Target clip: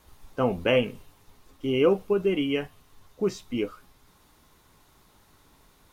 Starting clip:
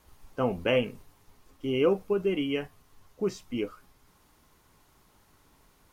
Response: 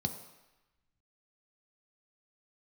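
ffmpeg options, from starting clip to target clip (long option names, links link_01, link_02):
-filter_complex "[0:a]asplit=2[link_01][link_02];[link_02]bandpass=frequency=3600:width_type=q:width=15:csg=0[link_03];[1:a]atrim=start_sample=2205,adelay=14[link_04];[link_03][link_04]afir=irnorm=-1:irlink=0,volume=1.5dB[link_05];[link_01][link_05]amix=inputs=2:normalize=0,volume=3dB"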